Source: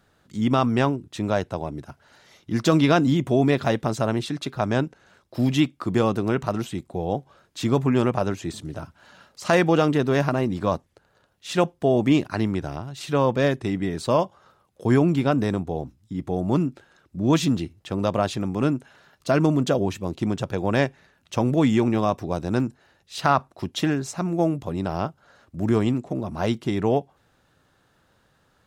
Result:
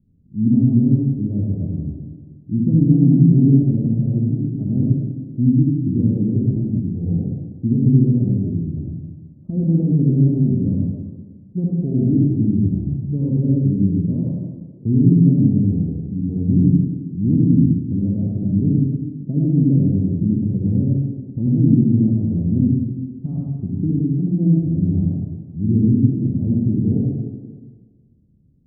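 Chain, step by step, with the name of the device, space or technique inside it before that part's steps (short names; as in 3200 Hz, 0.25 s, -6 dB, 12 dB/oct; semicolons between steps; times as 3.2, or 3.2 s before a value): club heard from the street (limiter -11 dBFS, peak gain reduction 7.5 dB; LPF 250 Hz 24 dB/oct; reverb RT60 1.5 s, pre-delay 57 ms, DRR -3.5 dB); gain +5.5 dB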